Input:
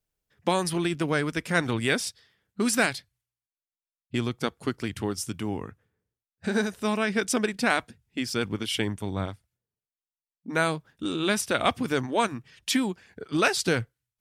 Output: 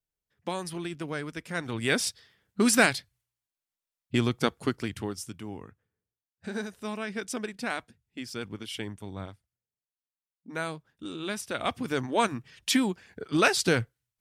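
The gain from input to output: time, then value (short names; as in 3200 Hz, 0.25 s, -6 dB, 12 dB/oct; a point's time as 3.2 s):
1.64 s -8.5 dB
2.04 s +2.5 dB
4.55 s +2.5 dB
5.39 s -8.5 dB
11.42 s -8.5 dB
12.3 s +0.5 dB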